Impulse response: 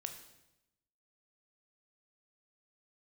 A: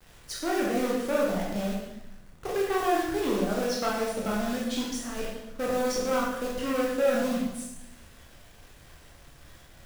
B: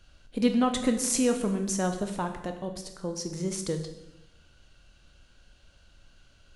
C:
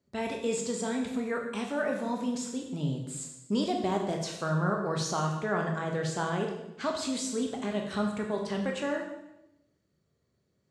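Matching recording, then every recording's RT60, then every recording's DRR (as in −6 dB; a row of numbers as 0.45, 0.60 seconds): B; 0.90, 0.90, 0.90 seconds; −4.5, 5.5, 1.0 decibels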